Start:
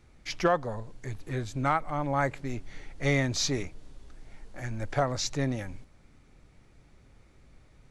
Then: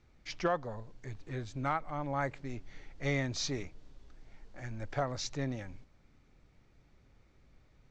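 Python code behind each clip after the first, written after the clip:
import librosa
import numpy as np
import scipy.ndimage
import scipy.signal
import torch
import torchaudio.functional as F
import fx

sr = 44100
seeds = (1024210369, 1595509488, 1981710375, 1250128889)

y = scipy.signal.sosfilt(scipy.signal.butter(4, 6800.0, 'lowpass', fs=sr, output='sos'), x)
y = y * 10.0 ** (-6.5 / 20.0)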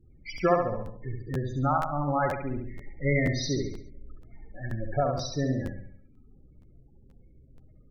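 y = fx.spec_topn(x, sr, count=16)
y = fx.echo_feedback(y, sr, ms=69, feedback_pct=47, wet_db=-4.0)
y = fx.buffer_crackle(y, sr, first_s=0.37, period_s=0.48, block=512, kind='repeat')
y = y * 10.0 ** (7.5 / 20.0)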